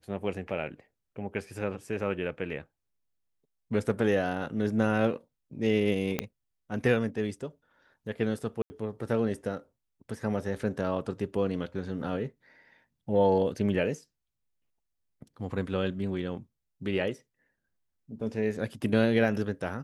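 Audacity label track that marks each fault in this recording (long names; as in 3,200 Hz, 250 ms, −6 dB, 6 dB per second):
6.190000	6.190000	click −13 dBFS
8.620000	8.700000	drop-out 80 ms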